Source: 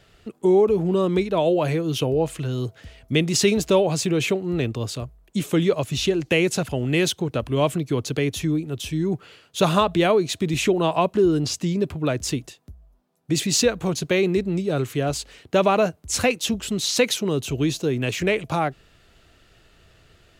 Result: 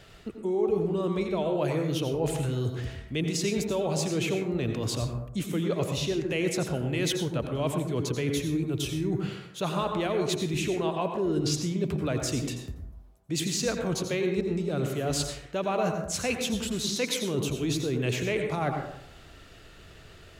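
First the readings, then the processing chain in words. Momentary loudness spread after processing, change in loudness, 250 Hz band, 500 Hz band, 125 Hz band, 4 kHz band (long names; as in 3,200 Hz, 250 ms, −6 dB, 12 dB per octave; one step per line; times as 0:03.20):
5 LU, −7.0 dB, −6.0 dB, −7.5 dB, −4.5 dB, −6.5 dB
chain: reversed playback
downward compressor 6 to 1, threshold −31 dBFS, peak gain reduction 17 dB
reversed playback
dense smooth reverb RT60 0.75 s, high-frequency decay 0.4×, pre-delay 75 ms, DRR 4 dB
level +3.5 dB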